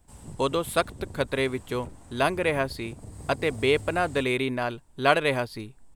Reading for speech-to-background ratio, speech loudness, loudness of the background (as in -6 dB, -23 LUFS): 17.0 dB, -27.0 LUFS, -44.0 LUFS